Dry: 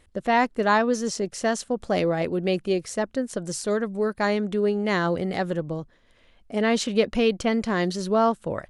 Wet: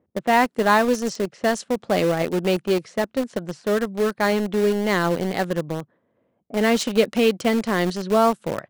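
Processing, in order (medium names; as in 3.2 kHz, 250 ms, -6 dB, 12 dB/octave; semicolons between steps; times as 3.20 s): level-controlled noise filter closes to 590 Hz, open at -20 dBFS; high-pass 120 Hz 24 dB/octave; in parallel at -8 dB: bit crusher 4-bit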